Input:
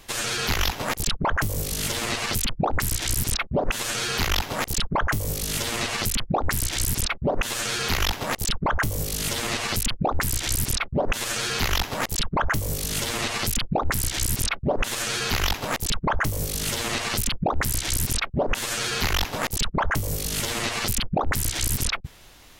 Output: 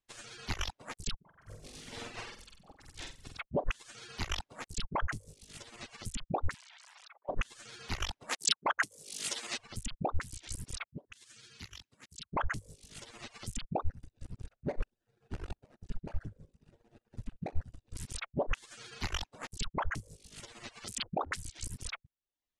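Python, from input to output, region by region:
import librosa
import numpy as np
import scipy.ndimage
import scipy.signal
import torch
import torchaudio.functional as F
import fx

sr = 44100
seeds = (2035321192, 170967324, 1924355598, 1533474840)

y = fx.chain(x, sr, fx.peak_eq(hz=9000.0, db=-7.0, octaves=1.3),
    fx.over_compress(threshold_db=-31.0, ratio=-1.0),
    fx.room_flutter(wall_m=8.1, rt60_s=1.2), at=(1.19, 3.4))
y = fx.chain(y, sr, fx.steep_highpass(hz=770.0, slope=36),
    fx.spacing_loss(db_at_10k=28),
    fx.env_flatten(amount_pct=100), at=(6.54, 7.29))
y = fx.chain(y, sr, fx.highpass(hz=250.0, slope=12),
    fx.high_shelf(hz=2300.0, db=8.5), at=(8.29, 9.58))
y = fx.chain(y, sr, fx.highpass(hz=80.0, slope=12),
    fx.peak_eq(hz=740.0, db=-14.5, octaves=1.8), at=(10.84, 12.32))
y = fx.chain(y, sr, fx.median_filter(points=41),
    fx.echo_feedback(ms=64, feedback_pct=58, wet_db=-11.5), at=(13.82, 17.96))
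y = fx.chain(y, sr, fx.highpass(hz=280.0, slope=6),
    fx.env_flatten(amount_pct=70), at=(20.87, 21.37))
y = fx.dereverb_blind(y, sr, rt60_s=0.94)
y = scipy.signal.sosfilt(scipy.signal.butter(6, 10000.0, 'lowpass', fs=sr, output='sos'), y)
y = fx.upward_expand(y, sr, threshold_db=-43.0, expansion=2.5)
y = y * 10.0 ** (-3.5 / 20.0)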